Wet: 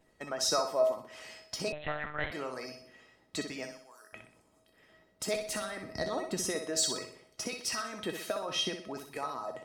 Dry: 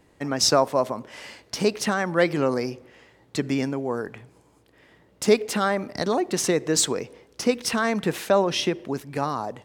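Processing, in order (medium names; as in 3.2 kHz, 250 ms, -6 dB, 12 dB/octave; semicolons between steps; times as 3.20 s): 5.36–6.46 s: bass shelf 170 Hz +11 dB; harmonic-percussive split harmonic -15 dB; 3.71–4.13 s: differentiator; in parallel at +2 dB: compression, threshold -35 dBFS, peak gain reduction 18 dB; on the sum: feedback comb 640 Hz, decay 0.36 s, mix 90%; flutter echo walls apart 10.7 m, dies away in 0.5 s; 1.72–2.32 s: monotone LPC vocoder at 8 kHz 150 Hz; trim +6 dB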